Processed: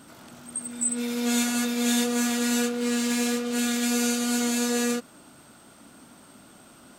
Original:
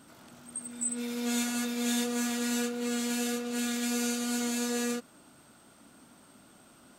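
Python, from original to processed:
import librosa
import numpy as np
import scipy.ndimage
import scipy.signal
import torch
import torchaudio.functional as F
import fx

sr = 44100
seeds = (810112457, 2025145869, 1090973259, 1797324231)

y = fx.doppler_dist(x, sr, depth_ms=0.11, at=(2.69, 3.53))
y = y * librosa.db_to_amplitude(6.0)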